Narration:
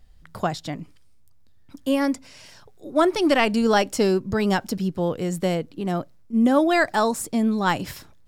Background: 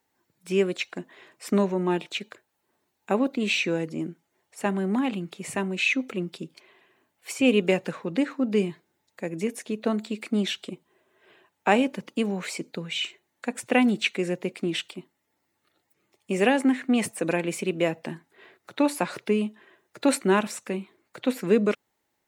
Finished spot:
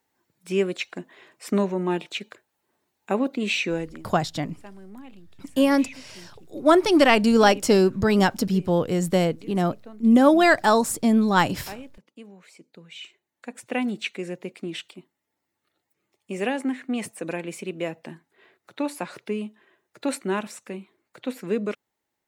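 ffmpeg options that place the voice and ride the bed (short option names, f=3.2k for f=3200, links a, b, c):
-filter_complex "[0:a]adelay=3700,volume=2.5dB[a];[1:a]volume=13.5dB,afade=t=out:st=3.78:d=0.25:silence=0.11885,afade=t=in:st=12.52:d=1.39:silence=0.211349[b];[a][b]amix=inputs=2:normalize=0"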